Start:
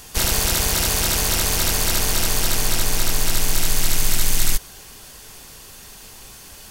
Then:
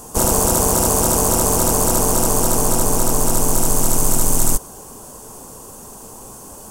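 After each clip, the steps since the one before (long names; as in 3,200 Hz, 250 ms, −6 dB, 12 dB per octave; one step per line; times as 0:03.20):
octave-band graphic EQ 125/250/500/1,000/2,000/4,000/8,000 Hz +4/+9/+8/+11/−12/−11/+9 dB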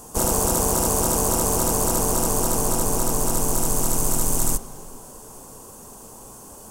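convolution reverb RT60 2.5 s, pre-delay 5 ms, DRR 13 dB
level −5 dB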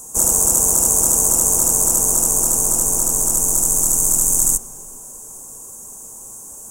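high shelf with overshoot 5,400 Hz +9.5 dB, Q 3
level −4.5 dB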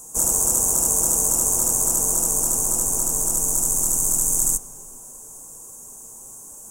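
flanger 0.9 Hz, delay 5.8 ms, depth 2.6 ms, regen −67%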